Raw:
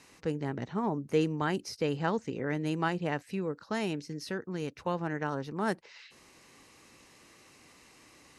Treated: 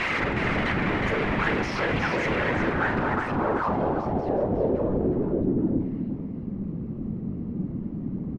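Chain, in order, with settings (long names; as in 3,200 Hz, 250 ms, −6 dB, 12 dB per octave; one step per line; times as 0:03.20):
sign of each sample alone
random phases in short frames
pitch shifter +0.5 semitones
double-tracking delay 42 ms −12 dB
single-tap delay 364 ms −5 dB
low-pass filter sweep 2,100 Hz → 200 Hz, 0:02.42–0:06.36
level +7.5 dB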